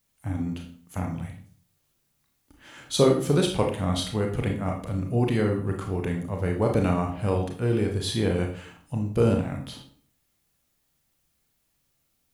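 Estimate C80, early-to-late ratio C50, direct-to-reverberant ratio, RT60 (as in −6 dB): 11.5 dB, 7.0 dB, 2.0 dB, 0.45 s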